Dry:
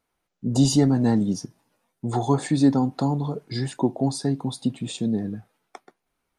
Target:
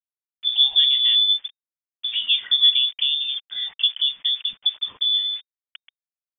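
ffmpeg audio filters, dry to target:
-filter_complex "[0:a]equalizer=f=170:t=o:w=0.6:g=14.5,aeval=exprs='val(0)*gte(abs(val(0)),0.0133)':c=same,acrossover=split=170 2700:gain=0.0794 1 0.2[a][b][c];[a][b][c]amix=inputs=3:normalize=0,lowpass=f=3.1k:t=q:w=0.5098,lowpass=f=3.1k:t=q:w=0.6013,lowpass=f=3.1k:t=q:w=0.9,lowpass=f=3.1k:t=q:w=2.563,afreqshift=-3700"

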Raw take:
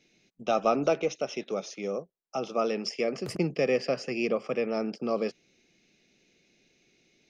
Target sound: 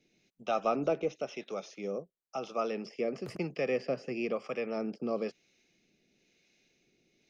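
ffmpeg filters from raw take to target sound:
-filter_complex "[0:a]acrossover=split=3500[a][b];[b]acompressor=threshold=-47dB:ratio=4:attack=1:release=60[c];[a][c]amix=inputs=2:normalize=0,acrossover=split=630[d][e];[d]aeval=exprs='val(0)*(1-0.5/2+0.5/2*cos(2*PI*1*n/s))':c=same[f];[e]aeval=exprs='val(0)*(1-0.5/2-0.5/2*cos(2*PI*1*n/s))':c=same[g];[f][g]amix=inputs=2:normalize=0,volume=-2.5dB"

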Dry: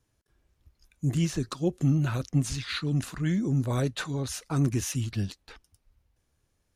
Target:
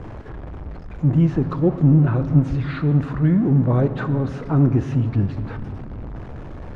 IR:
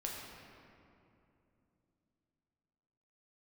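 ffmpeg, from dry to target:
-filter_complex "[0:a]aeval=exprs='val(0)+0.5*0.0188*sgn(val(0))':c=same,lowpass=1.1k,asplit=2[a][b];[1:a]atrim=start_sample=2205[c];[b][c]afir=irnorm=-1:irlink=0,volume=-7dB[d];[a][d]amix=inputs=2:normalize=0,volume=6dB"

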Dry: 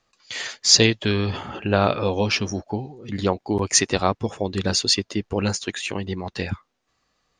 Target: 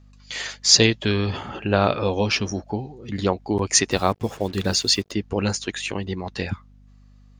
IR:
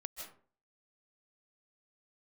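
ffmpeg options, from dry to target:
-filter_complex "[0:a]aeval=exprs='val(0)+0.00355*(sin(2*PI*50*n/s)+sin(2*PI*2*50*n/s)/2+sin(2*PI*3*50*n/s)/3+sin(2*PI*4*50*n/s)/4+sin(2*PI*5*50*n/s)/5)':c=same,asettb=1/sr,asplit=3[a][b][c];[a]atrim=end=3.914[d];[b]atrim=start=3.91:end=5.12,asetpts=PTS-STARTPTS,afade=t=in:d=0.004:c=qsin,afade=t=out:st=1.206:d=0.004:c=qsin,acrusher=bits=6:mix=0:aa=0.5[e];[c]atrim=start=5.116[f];[d][e]acrossfade=d=0.004:c1=hsin:c2=qsin[g];[g][f]acrossfade=d=0.004:c1=qsin:c2=hsin"

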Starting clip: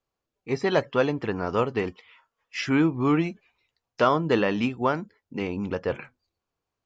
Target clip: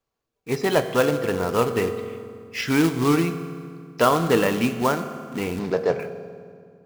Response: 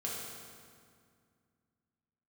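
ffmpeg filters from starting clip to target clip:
-filter_complex "[0:a]acrusher=bits=3:mode=log:mix=0:aa=0.000001,asettb=1/sr,asplit=3[a][b][c];[a]atrim=end=5.594[d];[b]atrim=start=5.59:end=6,asetpts=PTS-STARTPTS,afade=t=in:d=0.004:c=qsin,afade=t=out:st=0.406:d=0.004:c=qsin,highpass=140,equalizer=f=160:t=q:w=4:g=7,equalizer=f=230:t=q:w=4:g=-7,equalizer=f=400:t=q:w=4:g=7,equalizer=f=680:t=q:w=4:g=9,equalizer=f=3k:t=q:w=4:g=-9,lowpass=f=5.5k:w=0.5412,lowpass=f=5.5k:w=1.3066[e];[c]atrim=start=5.996[f];[d][e]acrossfade=d=0.004:c1=hsin:c2=qsin[g];[g][f]acrossfade=d=0.004:c1=qsin:c2=hsin,asplit=2[h][i];[1:a]atrim=start_sample=2205[j];[i][j]afir=irnorm=-1:irlink=0,volume=-8dB[k];[h][k]amix=inputs=2:normalize=0"

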